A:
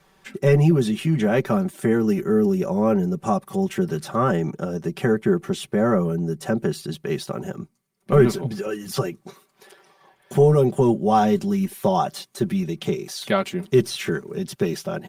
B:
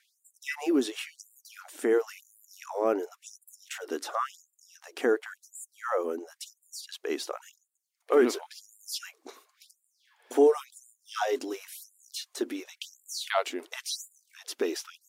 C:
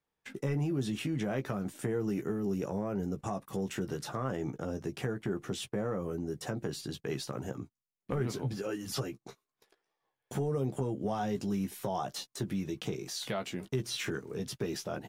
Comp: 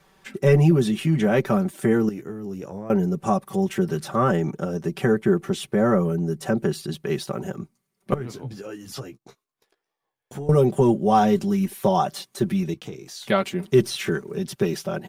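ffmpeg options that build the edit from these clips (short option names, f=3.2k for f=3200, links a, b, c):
-filter_complex "[2:a]asplit=3[a][b][c];[0:a]asplit=4[d][e][f][g];[d]atrim=end=2.092[h];[a]atrim=start=2.088:end=2.902[i];[e]atrim=start=2.898:end=8.142[j];[b]atrim=start=8.138:end=10.492[k];[f]atrim=start=10.488:end=12.742[l];[c]atrim=start=12.738:end=13.282[m];[g]atrim=start=13.278[n];[h][i]acrossfade=d=0.004:c1=hsin:c2=hsin[o];[o][j]acrossfade=d=0.004:c1=hsin:c2=hsin[p];[p][k]acrossfade=d=0.004:c1=hsin:c2=hsin[q];[q][l]acrossfade=d=0.004:c1=hsin:c2=hsin[r];[r][m]acrossfade=d=0.004:c1=hsin:c2=hsin[s];[s][n]acrossfade=d=0.004:c1=hsin:c2=hsin"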